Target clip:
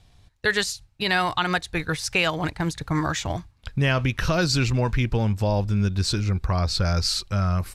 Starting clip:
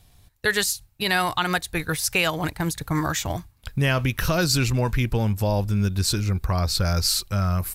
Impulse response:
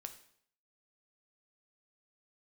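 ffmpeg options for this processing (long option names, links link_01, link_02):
-af "lowpass=6100"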